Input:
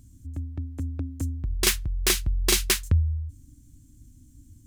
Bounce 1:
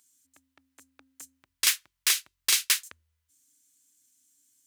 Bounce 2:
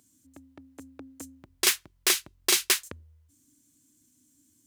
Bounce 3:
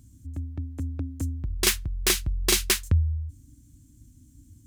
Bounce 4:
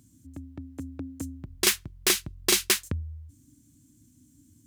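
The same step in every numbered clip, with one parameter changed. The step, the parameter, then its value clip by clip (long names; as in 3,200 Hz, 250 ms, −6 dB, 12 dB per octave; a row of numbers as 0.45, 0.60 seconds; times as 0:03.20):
high-pass filter, corner frequency: 1,400, 450, 44, 160 Hertz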